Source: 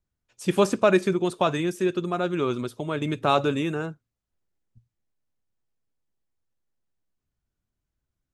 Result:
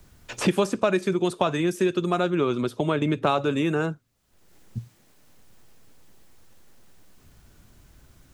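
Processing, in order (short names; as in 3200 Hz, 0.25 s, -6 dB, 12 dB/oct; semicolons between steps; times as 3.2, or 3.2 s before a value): 2.3–3.27 high shelf 3400 Hz -11.5 dB; three-band squash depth 100%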